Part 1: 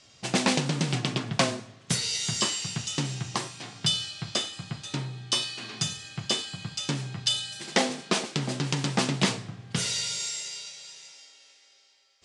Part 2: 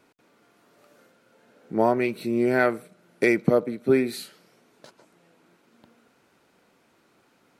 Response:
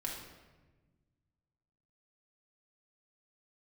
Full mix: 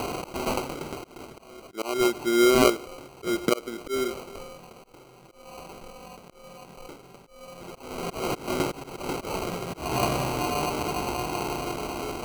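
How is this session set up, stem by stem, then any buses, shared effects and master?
+0.5 dB, 0.00 s, no send, level flattener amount 70%; auto duck -19 dB, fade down 1.60 s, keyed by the second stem
-2.0 dB, 0.00 s, send -18.5 dB, bass shelf 130 Hz +9.5 dB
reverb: on, RT60 1.3 s, pre-delay 4 ms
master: cabinet simulation 360–3900 Hz, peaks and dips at 370 Hz +9 dB, 1.3 kHz +9 dB, 2.8 kHz +6 dB; slow attack 255 ms; sample-and-hold 25×

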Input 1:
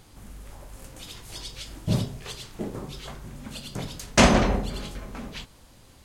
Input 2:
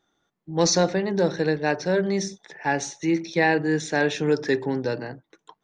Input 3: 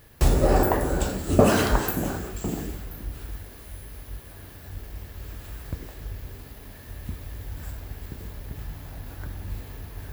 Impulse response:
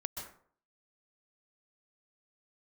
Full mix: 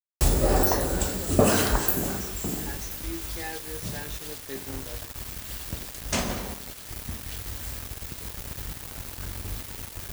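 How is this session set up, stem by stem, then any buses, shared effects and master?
-15.0 dB, 1.95 s, send -8.5 dB, none
-12.0 dB, 0.00 s, no send, feedback comb 67 Hz, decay 0.24 s, harmonics all, mix 90%
-3.5 dB, 0.00 s, send -21.5 dB, peaking EQ 14 kHz -3.5 dB 0.42 oct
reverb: on, RT60 0.55 s, pre-delay 118 ms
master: treble shelf 5.2 kHz +11.5 dB; bit crusher 6-bit

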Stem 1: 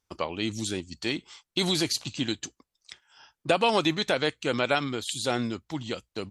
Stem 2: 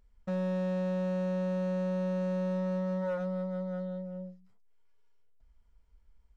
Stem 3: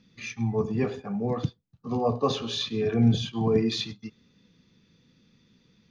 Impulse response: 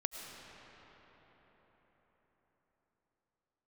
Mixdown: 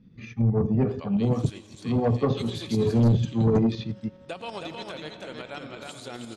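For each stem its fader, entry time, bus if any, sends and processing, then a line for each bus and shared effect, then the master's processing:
-9.0 dB, 0.80 s, send -6.5 dB, echo send -6.5 dB, auto duck -10 dB, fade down 1.75 s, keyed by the third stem
-7.5 dB, 1.70 s, no send, no echo send, high-pass 300 Hz; peak limiter -37.5 dBFS, peak gain reduction 11.5 dB
+1.0 dB, 0.00 s, no send, no echo send, low-pass 1.2 kHz 6 dB/octave; bass shelf 320 Hz +12 dB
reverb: on, RT60 5.0 s, pre-delay 65 ms
echo: delay 320 ms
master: tremolo saw up 12 Hz, depth 45%; saturation -15 dBFS, distortion -9 dB

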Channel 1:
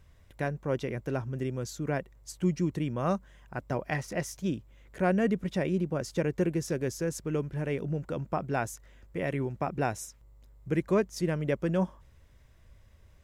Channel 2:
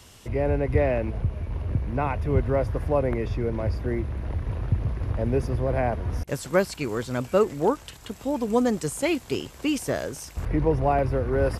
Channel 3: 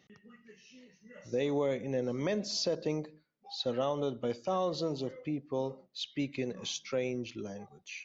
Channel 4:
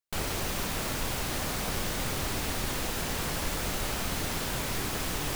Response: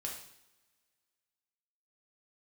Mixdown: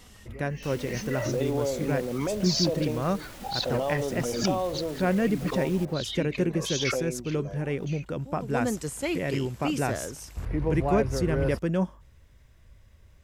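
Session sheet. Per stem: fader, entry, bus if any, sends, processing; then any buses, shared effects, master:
+2.5 dB, 0.00 s, no send, none
-4.0 dB, 0.00 s, no send, auto duck -23 dB, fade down 0.25 s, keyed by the third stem
-2.5 dB, 0.00 s, no send, peaking EQ 820 Hz +11.5 dB 2 oct; touch-sensitive flanger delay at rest 4.2 ms, full sweep at -21.5 dBFS; swell ahead of each attack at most 27 dB/s
-6.0 dB, 0.50 s, no send, peak limiter -31.5 dBFS, peak gain reduction 13 dB; level flattener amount 50%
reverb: none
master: peaking EQ 750 Hz -2.5 dB 1.8 oct

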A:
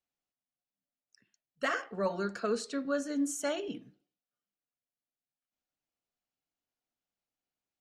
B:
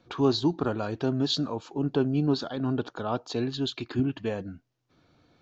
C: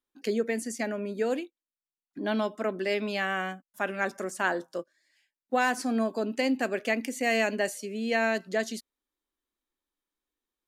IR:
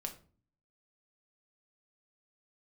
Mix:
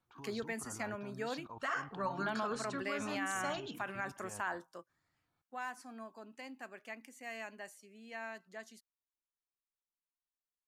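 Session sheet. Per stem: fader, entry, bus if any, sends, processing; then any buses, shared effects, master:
-2.0 dB, 0.00 s, no send, none
-10.0 dB, 0.00 s, no send, level held to a coarse grid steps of 18 dB
4.46 s -6 dB -> 5.25 s -17.5 dB, 0.00 s, no send, none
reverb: none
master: graphic EQ 250/500/1000/4000 Hz -5/-8/+7/-4 dB; peak limiter -26.5 dBFS, peak gain reduction 8.5 dB

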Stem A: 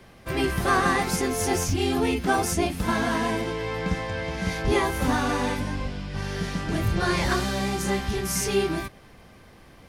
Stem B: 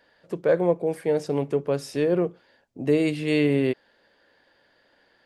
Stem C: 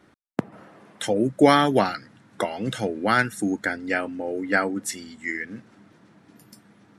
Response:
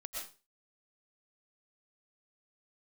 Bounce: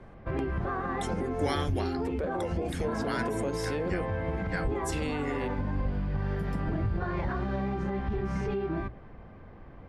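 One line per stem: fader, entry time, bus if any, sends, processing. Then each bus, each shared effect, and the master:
+0.5 dB, 0.00 s, bus A, no send, low-pass 1.4 kHz 12 dB/octave; hum notches 60/120/180/240/300/360 Hz; compression, threshold -28 dBFS, peak gain reduction 9.5 dB
+2.5 dB, 1.75 s, muted 4.11–4.92 s, bus A, no send, high-pass 370 Hz 6 dB/octave; compression, threshold -29 dBFS, peak gain reduction 11.5 dB
-17.5 dB, 0.00 s, no bus, no send, peaking EQ 6.8 kHz +8.5 dB 2.8 oct
bus A: 0.0 dB, treble shelf 9.7 kHz -4 dB; peak limiter -24 dBFS, peak gain reduction 8.5 dB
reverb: none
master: bass shelf 110 Hz +6.5 dB

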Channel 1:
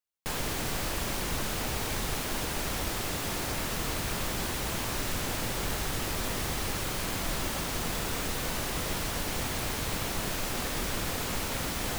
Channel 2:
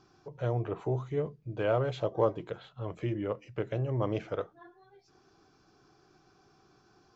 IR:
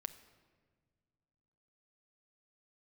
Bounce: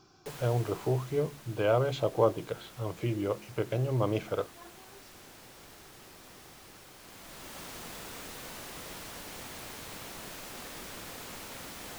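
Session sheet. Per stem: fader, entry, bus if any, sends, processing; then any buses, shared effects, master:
-10.0 dB, 0.00 s, no send, bass shelf 110 Hz -11.5 dB; auto duck -9 dB, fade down 1.45 s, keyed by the second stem
+2.0 dB, 0.00 s, no send, treble shelf 4 kHz +7 dB; band-stop 1.8 kHz, Q 6.9; de-hum 69.84 Hz, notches 5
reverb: none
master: none

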